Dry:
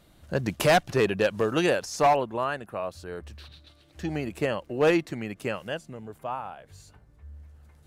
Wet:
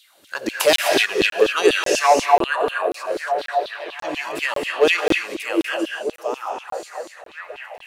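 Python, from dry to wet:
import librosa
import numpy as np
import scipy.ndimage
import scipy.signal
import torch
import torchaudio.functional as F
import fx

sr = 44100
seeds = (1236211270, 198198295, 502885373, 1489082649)

y = fx.high_shelf(x, sr, hz=2100.0, db=10.5)
y = fx.echo_stepped(y, sr, ms=625, hz=330.0, octaves=0.7, feedback_pct=70, wet_db=-3.5)
y = fx.rev_gated(y, sr, seeds[0], gate_ms=280, shape='rising', drr_db=1.5)
y = fx.filter_lfo_highpass(y, sr, shape='saw_down', hz=4.1, low_hz=270.0, high_hz=3700.0, q=3.5)
y = fx.buffer_crackle(y, sr, first_s=0.76, period_s=0.54, block=1024, kind='zero')
y = y * 10.0 ** (-1.0 / 20.0)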